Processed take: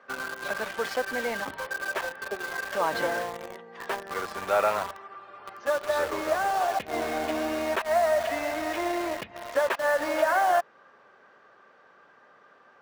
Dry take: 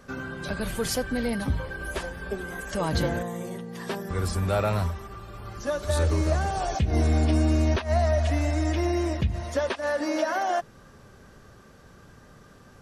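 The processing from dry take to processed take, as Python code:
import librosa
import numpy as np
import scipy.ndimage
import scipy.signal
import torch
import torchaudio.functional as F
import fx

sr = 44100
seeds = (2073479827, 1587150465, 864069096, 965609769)

p1 = fx.bandpass_edges(x, sr, low_hz=640.0, high_hz=2200.0)
p2 = fx.quant_dither(p1, sr, seeds[0], bits=6, dither='none')
p3 = p1 + (p2 * librosa.db_to_amplitude(-4.0))
y = p3 * librosa.db_to_amplitude(1.5)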